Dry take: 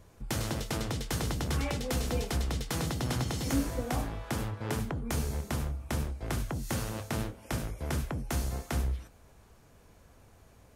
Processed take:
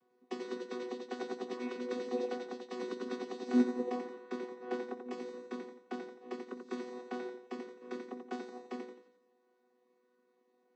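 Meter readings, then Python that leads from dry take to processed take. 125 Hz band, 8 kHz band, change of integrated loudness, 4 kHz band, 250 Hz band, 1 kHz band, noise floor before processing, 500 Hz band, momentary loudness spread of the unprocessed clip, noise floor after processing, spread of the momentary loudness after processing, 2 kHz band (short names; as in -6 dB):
under -30 dB, under -20 dB, -6.0 dB, -13.0 dB, -1.5 dB, -6.0 dB, -59 dBFS, 0.0 dB, 4 LU, -74 dBFS, 11 LU, -8.5 dB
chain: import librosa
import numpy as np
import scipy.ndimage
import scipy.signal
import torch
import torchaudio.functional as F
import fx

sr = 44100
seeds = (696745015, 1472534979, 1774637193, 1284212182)

y = fx.chord_vocoder(x, sr, chord='bare fifth', root=59)
y = scipy.signal.sosfilt(scipy.signal.butter(2, 5200.0, 'lowpass', fs=sr, output='sos'), y)
y = fx.low_shelf(y, sr, hz=260.0, db=-8.0)
y = fx.doubler(y, sr, ms=16.0, db=-13)
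y = fx.echo_feedback(y, sr, ms=87, feedback_pct=47, wet_db=-5.0)
y = fx.upward_expand(y, sr, threshold_db=-51.0, expansion=1.5)
y = F.gain(torch.from_numpy(y), 2.5).numpy()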